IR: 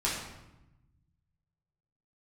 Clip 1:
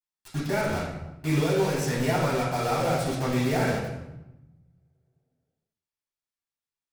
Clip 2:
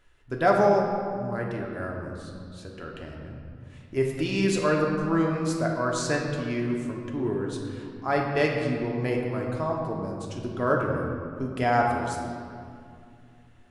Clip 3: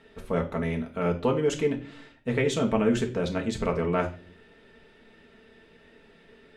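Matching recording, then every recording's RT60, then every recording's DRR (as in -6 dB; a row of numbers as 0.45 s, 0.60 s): 1; 0.95 s, 2.4 s, 0.40 s; -7.0 dB, -0.5 dB, 0.5 dB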